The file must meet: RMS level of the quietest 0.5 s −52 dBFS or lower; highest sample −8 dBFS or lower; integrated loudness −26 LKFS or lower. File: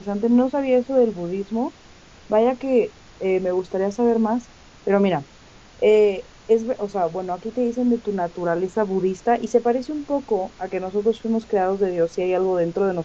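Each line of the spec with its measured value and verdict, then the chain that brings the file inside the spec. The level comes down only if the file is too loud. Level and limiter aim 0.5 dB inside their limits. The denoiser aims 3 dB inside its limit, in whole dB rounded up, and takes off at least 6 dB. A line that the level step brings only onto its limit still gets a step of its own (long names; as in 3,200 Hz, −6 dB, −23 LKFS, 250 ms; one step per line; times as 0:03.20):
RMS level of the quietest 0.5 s −47 dBFS: out of spec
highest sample −5.0 dBFS: out of spec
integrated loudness −22.0 LKFS: out of spec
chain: broadband denoise 6 dB, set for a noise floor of −47 dBFS
level −4.5 dB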